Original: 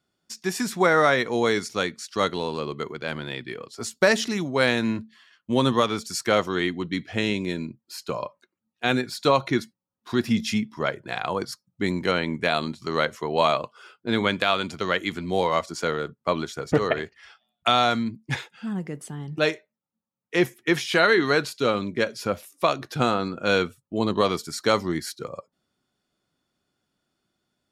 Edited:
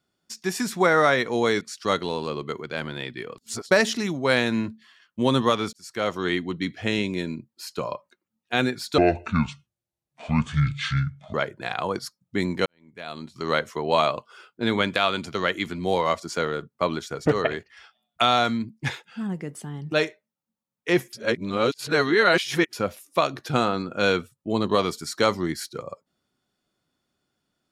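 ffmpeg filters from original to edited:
-filter_complex "[0:a]asplit=10[a][b][c][d][e][f][g][h][i][j];[a]atrim=end=1.612[k];[b]atrim=start=1.918:end=3.692[l];[c]atrim=start=3.688:end=4.022,asetpts=PTS-STARTPTS,areverse[m];[d]atrim=start=4.018:end=6.04,asetpts=PTS-STARTPTS,afade=t=out:st=2.018:d=0.004:c=hsin[n];[e]atrim=start=6.04:end=9.294,asetpts=PTS-STARTPTS,afade=t=in:d=0.55[o];[f]atrim=start=9.29:end=10.8,asetpts=PTS-STARTPTS,asetrate=28224,aresample=44100,atrim=end_sample=104048,asetpts=PTS-STARTPTS[p];[g]atrim=start=10.796:end=12.12,asetpts=PTS-STARTPTS,afade=t=out:st=1.32:d=0.004:c=hsin[q];[h]atrim=start=12.12:end=20.592,asetpts=PTS-STARTPTS,afade=t=in:d=0.85:c=qua[r];[i]atrim=start=20.588:end=22.192,asetpts=PTS-STARTPTS,areverse[s];[j]atrim=start=22.188[t];[k][l]acrossfade=d=0.004:c1=hsin:c2=hsin[u];[u][m]acrossfade=d=0.004:c1=hsin:c2=hsin[v];[n][o]concat=n=2:v=0:a=1[w];[v][w]acrossfade=d=0.004:c1=hsin:c2=hsin[x];[x][p]acrossfade=d=0.004:c1=hsin:c2=hsin[y];[q][r]concat=n=2:v=0:a=1[z];[y][z]acrossfade=d=0.004:c1=hsin:c2=hsin[aa];[aa][s]acrossfade=d=0.004:c1=hsin:c2=hsin[ab];[ab][t]acrossfade=d=0.004:c1=hsin:c2=hsin"

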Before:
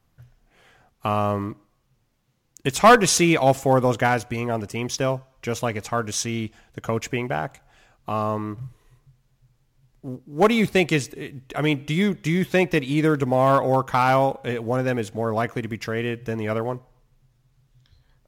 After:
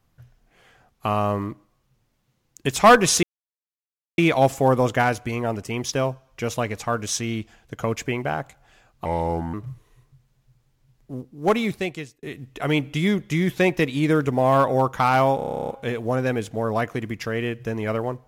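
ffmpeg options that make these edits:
-filter_complex "[0:a]asplit=16[a][b][c][d][e][f][g][h][i][j][k][l][m][n][o][p];[a]atrim=end=3.23,asetpts=PTS-STARTPTS,afade=t=out:st=3.226:d=0.004:c=hsin,apad=pad_dur=0.95[q];[b]atrim=start=3.23:end=8.104,asetpts=PTS-STARTPTS,afade=t=in:d=0.004:c=hsin[r];[c]atrim=start=8.1:end=8.48,asetpts=PTS-STARTPTS,asetrate=34398,aresample=44100[s];[d]atrim=start=8.476:end=11.17,asetpts=PTS-STARTPTS,afade=t=out:st=1.724:d=0.97[t];[e]atrim=start=11.17:end=14.332,asetpts=PTS-STARTPTS,afade=t=in:d=0.004:c=hsin[u];[f]atrim=start=14.298:end=14.332[v];[g]atrim=start=14.298:end=14.332[w];[h]atrim=start=14.298:end=14.332[x];[i]atrim=start=14.298:end=14.332[y];[j]atrim=start=14.298:end=14.332[z];[k]atrim=start=14.298:end=14.332[aa];[l]atrim=start=14.298:end=14.332[ab];[m]atrim=start=14.298:end=14.332[ac];[n]atrim=start=14.298:end=14.332[ad];[o]atrim=start=14.298:end=14.332[ae];[p]atrim=start=14.298[af];[q][r]concat=n=2:v=0:a=1[ag];[ag][s]acrossfade=d=0.004:c1=hsin:c2=hsin[ah];[t][u]concat=n=2:v=0:a=1[ai];[ah][ai]acrossfade=d=0.004:c1=hsin:c2=hsin[aj];[aj][v]acrossfade=d=0.004:c1=hsin:c2=hsin[ak];[ak][w]acrossfade=d=0.004:c1=hsin:c2=hsin[al];[al][x]acrossfade=d=0.004:c1=hsin:c2=hsin[am];[am][y]acrossfade=d=0.004:c1=hsin:c2=hsin[an];[an][z]acrossfade=d=0.004:c1=hsin:c2=hsin[ao];[ao][aa]acrossfade=d=0.004:c1=hsin:c2=hsin[ap];[ap][ab]acrossfade=d=0.004:c1=hsin:c2=hsin[aq];[aq][ac]acrossfade=d=0.004:c1=hsin:c2=hsin[ar];[ar][ad]acrossfade=d=0.004:c1=hsin:c2=hsin[as];[as][ae]acrossfade=d=0.004:c1=hsin:c2=hsin[at];[at][af]acrossfade=d=0.004:c1=hsin:c2=hsin"

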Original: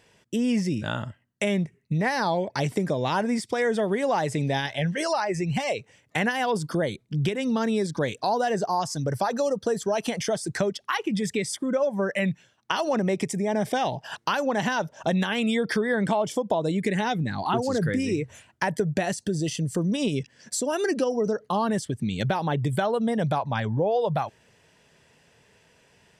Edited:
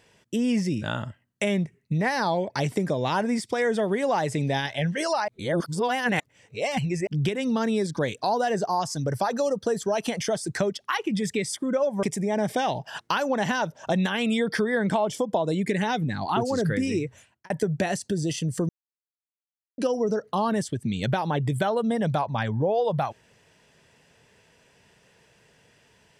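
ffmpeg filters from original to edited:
-filter_complex "[0:a]asplit=7[a][b][c][d][e][f][g];[a]atrim=end=5.282[h];[b]atrim=start=5.278:end=7.072,asetpts=PTS-STARTPTS,areverse[i];[c]atrim=start=7.068:end=12.032[j];[d]atrim=start=13.198:end=18.67,asetpts=PTS-STARTPTS,afade=t=out:st=4.932:d=0.54[k];[e]atrim=start=18.67:end=19.86,asetpts=PTS-STARTPTS,afade=t=in:d=0.004:c=hsin,afade=t=out:st=1.186:d=0.004:c=hsin[l];[f]atrim=start=19.86:end=20.95,asetpts=PTS-STARTPTS,volume=0[m];[g]atrim=start=20.95,asetpts=PTS-STARTPTS,afade=t=in:d=0.004:c=hsin[n];[h][i]acrossfade=d=0.004:c1=hsin:c2=hsin[o];[o][j]acrossfade=d=0.004:c1=hsin:c2=hsin[p];[k][l][m][n]concat=n=4:v=0:a=1[q];[p][q]acrossfade=d=0.004:c1=hsin:c2=hsin"

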